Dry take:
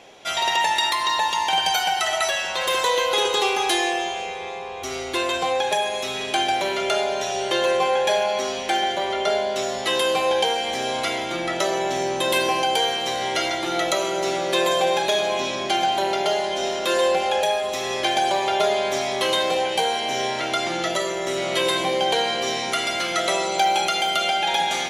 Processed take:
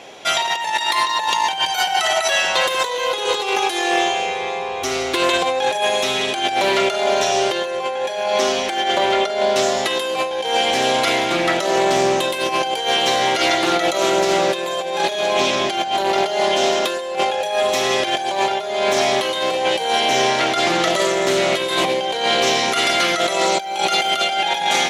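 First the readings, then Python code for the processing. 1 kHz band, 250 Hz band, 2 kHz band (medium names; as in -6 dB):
+3.5 dB, +5.0 dB, +4.5 dB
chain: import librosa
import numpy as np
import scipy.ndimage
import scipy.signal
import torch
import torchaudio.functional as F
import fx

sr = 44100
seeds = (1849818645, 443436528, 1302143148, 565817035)

y = fx.low_shelf(x, sr, hz=65.0, db=-11.5)
y = fx.over_compress(y, sr, threshold_db=-24.0, ratio=-0.5)
y = fx.doppler_dist(y, sr, depth_ms=0.14)
y = y * 10.0 ** (6.0 / 20.0)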